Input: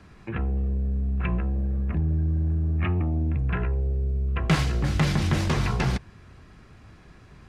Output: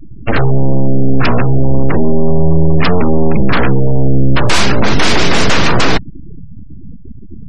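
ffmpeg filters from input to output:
ffmpeg -i in.wav -af "apsyclip=25dB,aeval=exprs='abs(val(0))':channel_layout=same,afftfilt=real='re*gte(hypot(re,im),0.158)':imag='im*gte(hypot(re,im),0.158)':win_size=1024:overlap=0.75,volume=-2dB" out.wav

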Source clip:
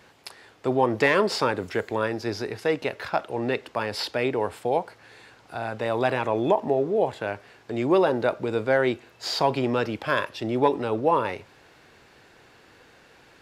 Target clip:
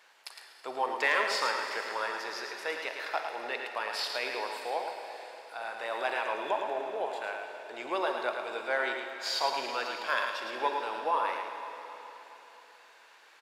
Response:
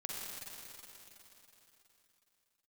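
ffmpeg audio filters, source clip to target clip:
-filter_complex "[0:a]highpass=800,aecho=1:1:109:0.501,asplit=2[link_01][link_02];[1:a]atrim=start_sample=2205,lowshelf=frequency=130:gain=-10.5[link_03];[link_02][link_03]afir=irnorm=-1:irlink=0,volume=-0.5dB[link_04];[link_01][link_04]amix=inputs=2:normalize=0,volume=-8dB"

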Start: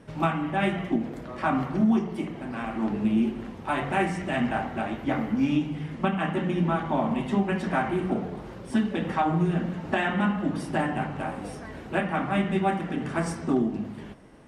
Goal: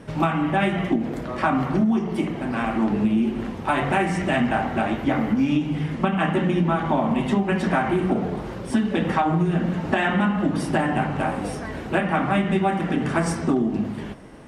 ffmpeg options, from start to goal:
ffmpeg -i in.wav -af "acompressor=threshold=-25dB:ratio=6,volume=8dB" out.wav

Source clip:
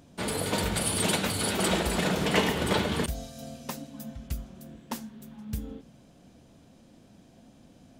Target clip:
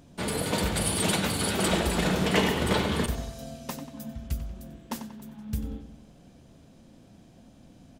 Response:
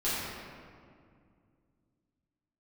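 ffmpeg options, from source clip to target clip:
-filter_complex "[0:a]lowshelf=frequency=110:gain=6,bandreject=frequency=50:width_type=h:width=6,bandreject=frequency=100:width_type=h:width=6,asplit=2[link_01][link_02];[link_02]adelay=93,lowpass=frequency=4500:poles=1,volume=-10dB,asplit=2[link_03][link_04];[link_04]adelay=93,lowpass=frequency=4500:poles=1,volume=0.53,asplit=2[link_05][link_06];[link_06]adelay=93,lowpass=frequency=4500:poles=1,volume=0.53,asplit=2[link_07][link_08];[link_08]adelay=93,lowpass=frequency=4500:poles=1,volume=0.53,asplit=2[link_09][link_10];[link_10]adelay=93,lowpass=frequency=4500:poles=1,volume=0.53,asplit=2[link_11][link_12];[link_12]adelay=93,lowpass=frequency=4500:poles=1,volume=0.53[link_13];[link_03][link_05][link_07][link_09][link_11][link_13]amix=inputs=6:normalize=0[link_14];[link_01][link_14]amix=inputs=2:normalize=0"

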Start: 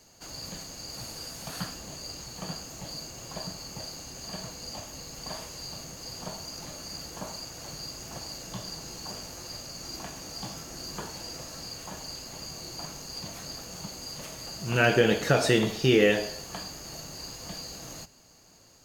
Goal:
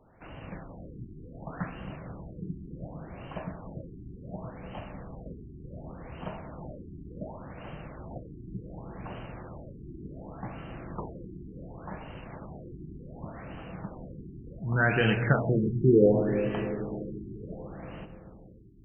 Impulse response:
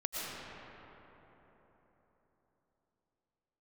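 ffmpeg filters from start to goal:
-filter_complex "[0:a]asplit=3[link_01][link_02][link_03];[link_01]afade=type=out:start_time=14.54:duration=0.02[link_04];[link_02]equalizer=frequency=470:width_type=o:width=1.6:gain=-8.5,afade=type=in:start_time=14.54:duration=0.02,afade=type=out:start_time=15.64:duration=0.02[link_05];[link_03]afade=type=in:start_time=15.64:duration=0.02[link_06];[link_04][link_05][link_06]amix=inputs=3:normalize=0,asplit=2[link_07][link_08];[1:a]atrim=start_sample=2205,lowshelf=frequency=290:gain=11[link_09];[link_08][link_09]afir=irnorm=-1:irlink=0,volume=-15dB[link_10];[link_07][link_10]amix=inputs=2:normalize=0,afftfilt=real='re*lt(b*sr/1024,400*pow(3200/400,0.5+0.5*sin(2*PI*0.68*pts/sr)))':imag='im*lt(b*sr/1024,400*pow(3200/400,0.5+0.5*sin(2*PI*0.68*pts/sr)))':win_size=1024:overlap=0.75"

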